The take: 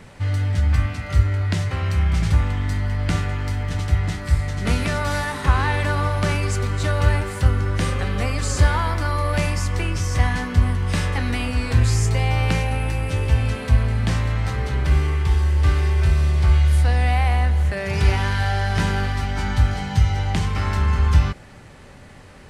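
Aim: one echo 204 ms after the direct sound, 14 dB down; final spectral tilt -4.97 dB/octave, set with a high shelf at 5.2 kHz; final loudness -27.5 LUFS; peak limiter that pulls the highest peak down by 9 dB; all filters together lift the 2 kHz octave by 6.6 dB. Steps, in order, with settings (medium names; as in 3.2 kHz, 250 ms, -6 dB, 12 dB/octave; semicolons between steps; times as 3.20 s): peaking EQ 2 kHz +7.5 dB; treble shelf 5.2 kHz +4.5 dB; peak limiter -11 dBFS; delay 204 ms -14 dB; trim -6.5 dB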